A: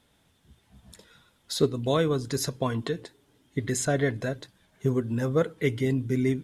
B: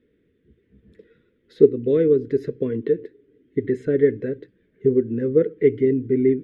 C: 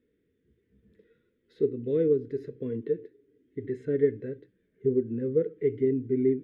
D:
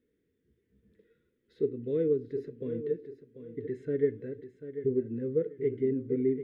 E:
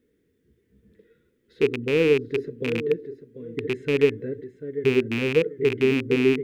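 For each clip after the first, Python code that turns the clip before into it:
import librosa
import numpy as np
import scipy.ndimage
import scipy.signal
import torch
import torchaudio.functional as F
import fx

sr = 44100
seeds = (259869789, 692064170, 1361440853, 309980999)

y1 = fx.curve_eq(x, sr, hz=(140.0, 450.0, 780.0, 1900.0, 6900.0), db=(0, 15, -26, 1, -30))
y1 = F.gain(torch.from_numpy(y1), -2.5).numpy()
y2 = fx.hpss(y1, sr, part='percussive', gain_db=-8)
y2 = F.gain(torch.from_numpy(y2), -6.0).numpy()
y3 = fx.echo_feedback(y2, sr, ms=741, feedback_pct=26, wet_db=-11.5)
y3 = F.gain(torch.from_numpy(y3), -3.5).numpy()
y4 = fx.rattle_buzz(y3, sr, strikes_db=-36.0, level_db=-25.0)
y4 = F.gain(torch.from_numpy(y4), 8.0).numpy()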